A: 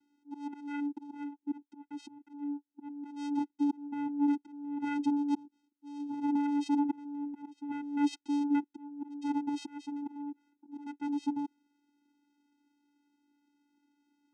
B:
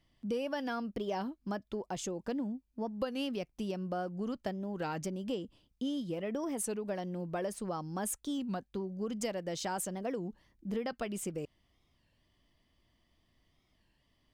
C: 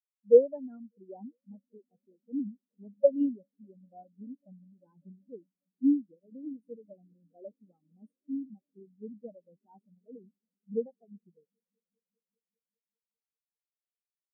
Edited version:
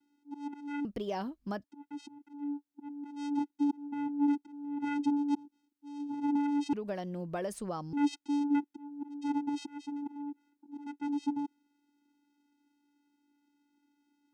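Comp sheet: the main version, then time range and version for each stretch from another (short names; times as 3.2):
A
0.85–1.64 from B
6.73–7.93 from B
not used: C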